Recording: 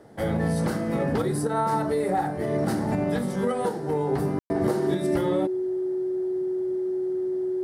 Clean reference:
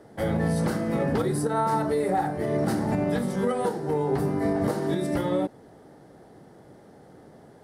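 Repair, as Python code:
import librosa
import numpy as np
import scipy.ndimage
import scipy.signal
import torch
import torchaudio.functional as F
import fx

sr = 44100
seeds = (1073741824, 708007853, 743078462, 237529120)

y = fx.notch(x, sr, hz=370.0, q=30.0)
y = fx.fix_ambience(y, sr, seeds[0], print_start_s=0.0, print_end_s=0.5, start_s=4.39, end_s=4.5)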